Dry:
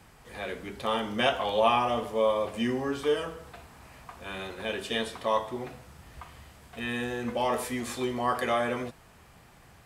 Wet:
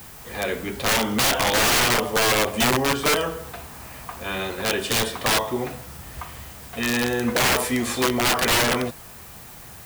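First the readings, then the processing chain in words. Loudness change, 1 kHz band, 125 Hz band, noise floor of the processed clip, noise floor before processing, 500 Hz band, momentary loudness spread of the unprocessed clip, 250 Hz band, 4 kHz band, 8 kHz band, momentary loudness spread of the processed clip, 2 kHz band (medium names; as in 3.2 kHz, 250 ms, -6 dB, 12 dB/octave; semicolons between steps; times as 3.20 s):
+8.5 dB, +5.0 dB, +11.0 dB, -42 dBFS, -55 dBFS, +3.5 dB, 21 LU, +7.5 dB, +12.5 dB, +20.5 dB, 19 LU, +12.0 dB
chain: Chebyshev shaper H 5 -17 dB, 6 -18 dB, 7 -38 dB, 8 -23 dB, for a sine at -11 dBFS; integer overflow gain 20 dB; added noise blue -50 dBFS; trim +5.5 dB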